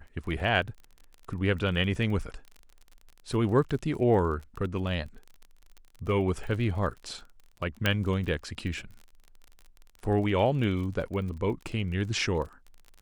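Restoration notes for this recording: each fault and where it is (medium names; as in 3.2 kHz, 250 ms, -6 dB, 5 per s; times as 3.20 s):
crackle 32 per s -37 dBFS
7.86 s: pop -10 dBFS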